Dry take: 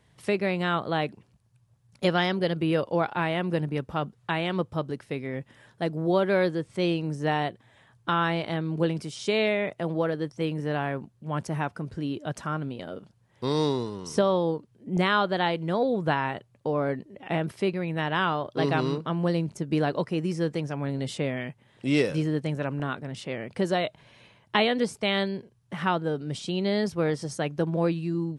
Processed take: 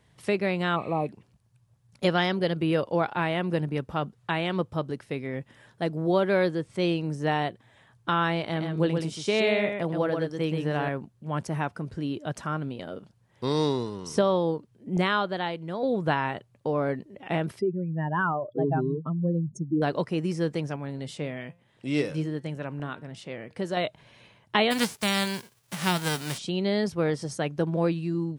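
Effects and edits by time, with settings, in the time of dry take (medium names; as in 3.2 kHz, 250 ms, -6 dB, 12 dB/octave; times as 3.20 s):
0.78–1.04 s: spectral replace 1.3–9.1 kHz after
8.43–10.89 s: delay 127 ms -5 dB
14.95–15.83 s: fade out quadratic, to -6.5 dB
17.59–19.82 s: spectral contrast enhancement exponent 2.7
20.76–23.77 s: flange 1.2 Hz, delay 5.7 ms, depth 1.1 ms, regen +89%
24.70–26.37 s: formants flattened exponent 0.3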